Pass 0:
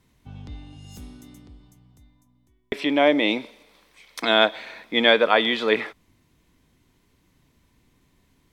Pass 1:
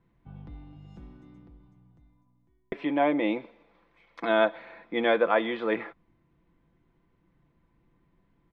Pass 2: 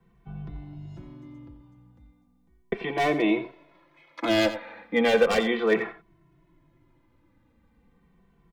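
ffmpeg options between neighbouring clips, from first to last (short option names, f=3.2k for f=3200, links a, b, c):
-af "lowpass=1.6k,aecho=1:1:5.9:0.47,volume=-4.5dB"
-filter_complex "[0:a]acrossover=split=240|510|1900[a][b][c][d];[c]aeval=exprs='0.0422*(abs(mod(val(0)/0.0422+3,4)-2)-1)':c=same[e];[a][b][e][d]amix=inputs=4:normalize=0,aecho=1:1:88:0.224,asplit=2[f][g];[g]adelay=2.2,afreqshift=-0.36[h];[f][h]amix=inputs=2:normalize=1,volume=8dB"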